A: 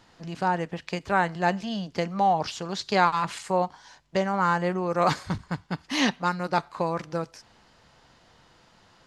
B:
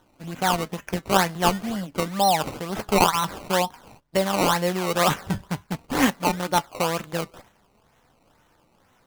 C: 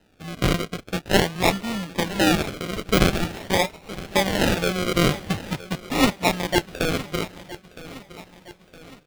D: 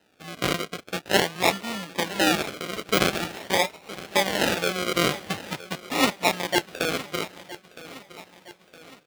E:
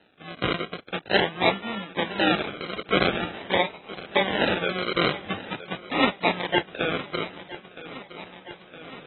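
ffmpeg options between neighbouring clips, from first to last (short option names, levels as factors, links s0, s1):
-af "agate=range=0.501:threshold=0.002:ratio=16:detection=peak,acrusher=samples=18:mix=1:aa=0.000001:lfo=1:lforange=18:lforate=2.1,flanger=delay=3.3:depth=1.9:regen=76:speed=0.47:shape=sinusoidal,volume=2.24"
-af "acrusher=samples=39:mix=1:aa=0.000001:lfo=1:lforange=23.4:lforate=0.45,equalizer=f=3000:w=0.78:g=6.5,aecho=1:1:964|1928|2892|3856:0.141|0.072|0.0367|0.0187"
-af "highpass=f=410:p=1"
-af "areverse,acompressor=mode=upward:threshold=0.0251:ratio=2.5,areverse,volume=0.891" -ar 24000 -c:a aac -b:a 16k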